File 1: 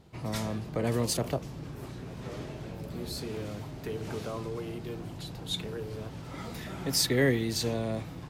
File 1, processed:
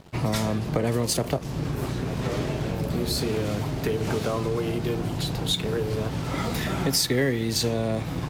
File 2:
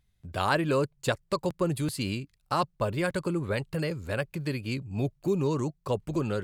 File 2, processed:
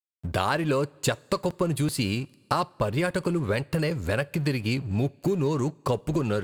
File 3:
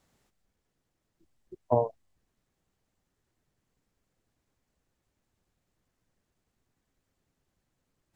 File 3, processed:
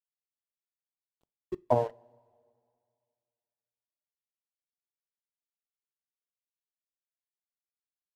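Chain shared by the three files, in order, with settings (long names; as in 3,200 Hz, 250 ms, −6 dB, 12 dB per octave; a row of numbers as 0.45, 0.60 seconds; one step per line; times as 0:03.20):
downward compressor 4 to 1, threshold −36 dBFS
dead-zone distortion −58 dBFS
coupled-rooms reverb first 0.26 s, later 2.2 s, from −18 dB, DRR 19 dB
normalise the peak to −9 dBFS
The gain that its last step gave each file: +14.5, +12.5, +12.5 decibels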